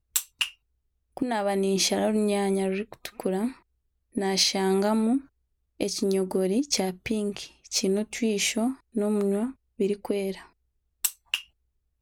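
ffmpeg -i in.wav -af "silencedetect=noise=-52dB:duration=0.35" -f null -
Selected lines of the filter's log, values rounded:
silence_start: 0.54
silence_end: 1.17 | silence_duration: 0.63
silence_start: 3.60
silence_end: 4.13 | silence_duration: 0.53
silence_start: 5.26
silence_end: 5.80 | silence_duration: 0.53
silence_start: 10.49
silence_end: 11.04 | silence_duration: 0.55
silence_start: 11.46
silence_end: 12.02 | silence_duration: 0.56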